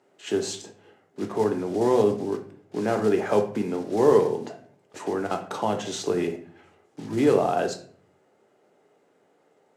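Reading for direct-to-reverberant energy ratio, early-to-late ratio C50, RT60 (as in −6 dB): 4.5 dB, 10.5 dB, 0.50 s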